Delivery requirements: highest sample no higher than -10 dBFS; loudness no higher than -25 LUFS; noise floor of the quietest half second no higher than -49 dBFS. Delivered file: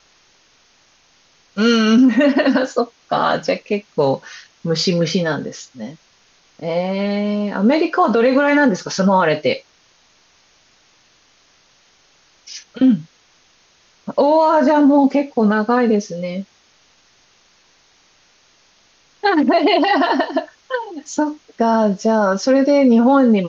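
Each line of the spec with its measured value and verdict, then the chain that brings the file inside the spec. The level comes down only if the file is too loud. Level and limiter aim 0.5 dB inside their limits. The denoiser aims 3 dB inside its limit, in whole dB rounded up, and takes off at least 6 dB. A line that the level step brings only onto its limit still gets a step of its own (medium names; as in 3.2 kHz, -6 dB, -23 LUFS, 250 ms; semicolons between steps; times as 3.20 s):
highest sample -5.5 dBFS: fail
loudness -16.5 LUFS: fail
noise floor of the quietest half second -55 dBFS: pass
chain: trim -9 dB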